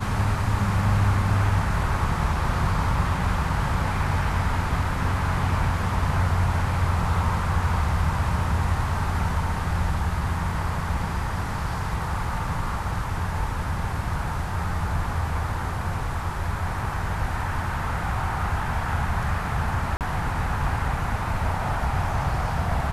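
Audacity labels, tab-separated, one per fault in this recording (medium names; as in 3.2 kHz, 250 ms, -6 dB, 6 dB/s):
19.970000	20.010000	dropout 38 ms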